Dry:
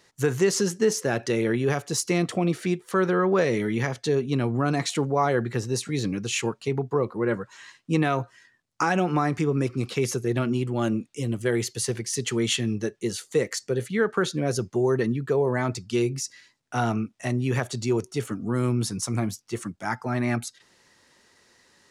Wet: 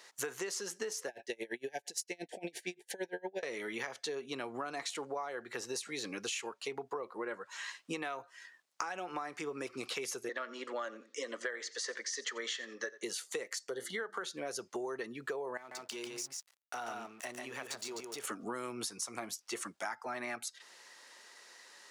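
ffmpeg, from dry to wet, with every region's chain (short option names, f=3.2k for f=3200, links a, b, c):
-filter_complex "[0:a]asettb=1/sr,asplit=3[a][b][c];[a]atrim=end=1.084[d];[b]atrim=start=1.08:end=3.43,asetpts=PTS-STARTPTS,afade=t=in:d=0.004:c=qsin,afade=t=out:st=2.346:d=0.004:c=qsin,asuperstop=centerf=1200:order=20:qfactor=1.9,aeval=exprs='val(0)*pow(10,-32*(0.5-0.5*cos(2*PI*8.7*n/s))/20)':c=same[e];[c]atrim=start=3.426[f];[d][e]acrossfade=d=0.004:c1=hsin:c2=qsin[g];[g][f]acrossfade=d=0.004:c1=qsin:c2=hsin,asettb=1/sr,asplit=3[h][i][j];[h]atrim=end=10.294[k];[i]atrim=start=10.29:end=13.03,asetpts=PTS-STARTPTS,afade=t=in:d=0.004:c=qsin,afade=t=out:st=2.736:d=0.004:c=qsin,highpass=f=270:w=0.5412,highpass=f=270:w=1.3066,equalizer=f=360:t=q:w=4:g=-8,equalizer=f=540:t=q:w=4:g=7,equalizer=f=760:t=q:w=4:g=-8,equalizer=f=1.2k:t=q:w=4:g=5,equalizer=f=1.8k:t=q:w=4:g=10,equalizer=f=2.6k:t=q:w=4:g=-9,lowpass=f=6.5k:w=0.5412,lowpass=f=6.5k:w=1.3066,aecho=1:1:87|174:0.112|0.0168,atrim=end_sample=120834[l];[j]atrim=start=13.026[m];[k][l]acrossfade=d=0.004:c1=hsin:c2=qsin[n];[n][m]acrossfade=d=0.004:c1=qsin:c2=hsin,asettb=1/sr,asplit=3[o][p][q];[o]atrim=end=13.694[r];[p]atrim=start=13.69:end=14.24,asetpts=PTS-STARTPTS,afade=t=in:d=0.004:c=qsin,afade=t=out:st=0.546:d=0.004:c=qsin,bandreject=f=50:t=h:w=6,bandreject=f=100:t=h:w=6,bandreject=f=150:t=h:w=6,bandreject=f=200:t=h:w=6,bandreject=f=250:t=h:w=6,bandreject=f=300:t=h:w=6,bandreject=f=350:t=h:w=6,acompressor=mode=upward:threshold=-27dB:ratio=2.5:attack=3.2:release=140:knee=2.83:detection=peak,asuperstop=centerf=2500:order=8:qfactor=3.7[s];[q]atrim=start=14.236[t];[r][s]acrossfade=d=0.004:c1=hsin:c2=qsin[u];[u][t]acrossfade=d=0.004:c1=qsin:c2=hsin,asettb=1/sr,asplit=3[v][w][x];[v]atrim=end=15.574[y];[w]atrim=start=15.57:end=18.24,asetpts=PTS-STARTPTS,afade=t=in:d=0.004:c=qsin,afade=t=out:st=2.666:d=0.004:c=qsin,aeval=exprs='sgn(val(0))*max(abs(val(0))-0.00631,0)':c=same,acompressor=threshold=-41dB:ratio=3:attack=3.2:release=140:knee=1:detection=peak,aecho=1:1:142:0.631,atrim=end_sample=117747[z];[x]atrim=start=18.236[aa];[y][z]acrossfade=d=0.004:c1=hsin:c2=qsin[ab];[ab][aa]acrossfade=d=0.004:c1=qsin:c2=hsin,highpass=580,acompressor=threshold=-40dB:ratio=12,volume=4dB"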